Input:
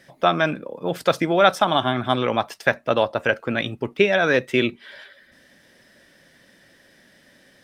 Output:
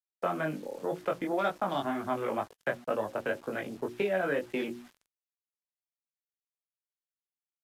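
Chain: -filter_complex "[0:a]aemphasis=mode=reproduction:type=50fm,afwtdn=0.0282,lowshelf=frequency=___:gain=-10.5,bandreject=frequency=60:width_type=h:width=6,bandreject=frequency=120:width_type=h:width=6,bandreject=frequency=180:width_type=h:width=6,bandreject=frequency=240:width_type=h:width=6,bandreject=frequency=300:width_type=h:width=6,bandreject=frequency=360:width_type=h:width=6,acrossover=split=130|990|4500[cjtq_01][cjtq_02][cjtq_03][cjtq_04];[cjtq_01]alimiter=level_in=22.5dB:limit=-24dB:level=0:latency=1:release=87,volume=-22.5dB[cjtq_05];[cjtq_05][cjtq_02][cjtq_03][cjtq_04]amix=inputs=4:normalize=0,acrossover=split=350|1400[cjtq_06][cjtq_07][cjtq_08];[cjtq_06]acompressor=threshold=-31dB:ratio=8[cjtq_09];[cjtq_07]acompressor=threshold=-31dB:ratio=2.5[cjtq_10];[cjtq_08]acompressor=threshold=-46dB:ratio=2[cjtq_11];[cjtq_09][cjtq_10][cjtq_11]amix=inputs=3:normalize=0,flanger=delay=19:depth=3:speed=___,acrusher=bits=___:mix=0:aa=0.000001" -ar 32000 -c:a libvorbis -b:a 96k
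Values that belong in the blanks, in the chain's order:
170, 2, 8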